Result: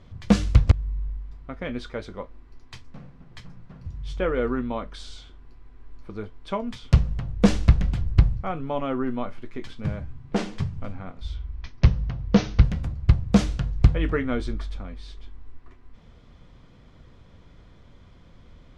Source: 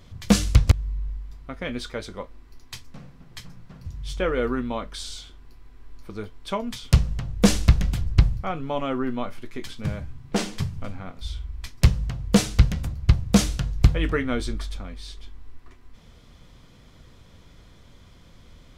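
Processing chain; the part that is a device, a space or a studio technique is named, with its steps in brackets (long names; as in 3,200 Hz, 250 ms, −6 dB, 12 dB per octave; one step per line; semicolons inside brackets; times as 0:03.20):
through cloth (low-pass filter 8,700 Hz 12 dB per octave; high-shelf EQ 3,600 Hz −12.5 dB)
0:11.36–0:12.64: Butterworth low-pass 6,400 Hz 96 dB per octave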